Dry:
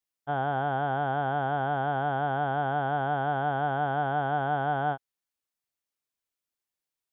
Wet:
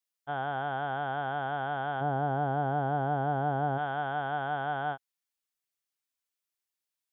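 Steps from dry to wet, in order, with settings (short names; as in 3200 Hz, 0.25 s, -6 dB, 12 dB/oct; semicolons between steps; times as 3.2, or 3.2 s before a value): tilt shelf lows -4 dB, from 2 s lows +5.5 dB, from 3.77 s lows -4 dB; gain -3.5 dB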